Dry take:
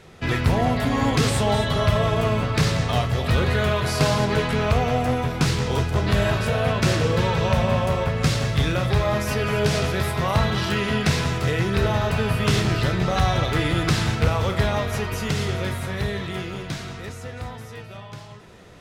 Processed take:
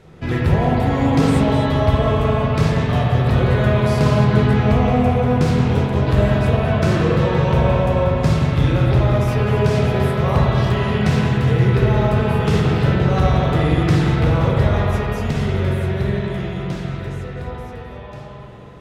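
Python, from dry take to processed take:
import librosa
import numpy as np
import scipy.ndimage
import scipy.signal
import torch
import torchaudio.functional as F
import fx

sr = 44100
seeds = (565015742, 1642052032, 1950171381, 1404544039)

y = fx.tilt_shelf(x, sr, db=4.5, hz=1100.0)
y = fx.rev_spring(y, sr, rt60_s=3.0, pass_ms=(44, 57), chirp_ms=40, drr_db=-3.0)
y = y * 10.0 ** (-2.5 / 20.0)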